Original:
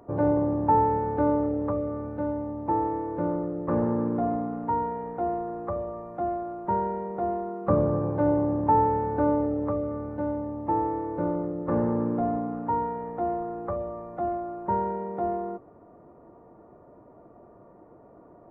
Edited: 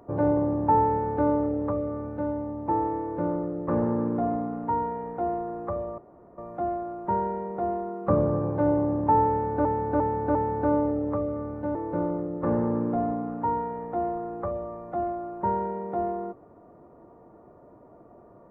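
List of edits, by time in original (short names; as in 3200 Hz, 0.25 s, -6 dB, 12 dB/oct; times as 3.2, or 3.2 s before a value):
5.98 insert room tone 0.40 s
8.9–9.25 loop, 4 plays
10.3–11 cut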